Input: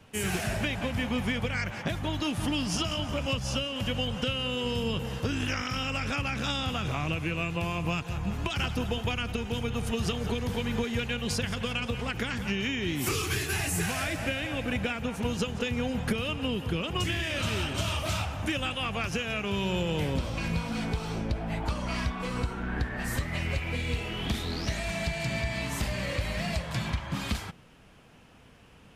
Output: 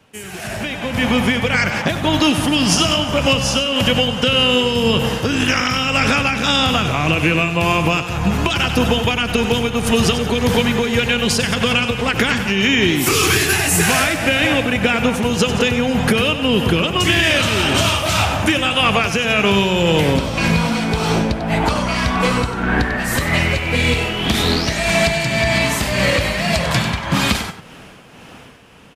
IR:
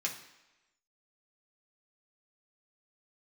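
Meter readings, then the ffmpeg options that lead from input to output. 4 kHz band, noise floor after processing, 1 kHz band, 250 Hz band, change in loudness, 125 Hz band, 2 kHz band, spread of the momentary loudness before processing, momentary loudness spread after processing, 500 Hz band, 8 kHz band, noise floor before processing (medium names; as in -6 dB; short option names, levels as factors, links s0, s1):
+15.5 dB, -39 dBFS, +15.5 dB, +14.0 dB, +14.5 dB, +11.0 dB, +15.5 dB, 3 LU, 4 LU, +15.0 dB, +15.5 dB, -54 dBFS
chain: -af "tremolo=f=1.8:d=0.49,alimiter=limit=0.075:level=0:latency=1:release=99,aecho=1:1:96:0.299,dynaudnorm=f=340:g=5:m=5.96,lowshelf=f=100:g=-11.5,volume=1.5"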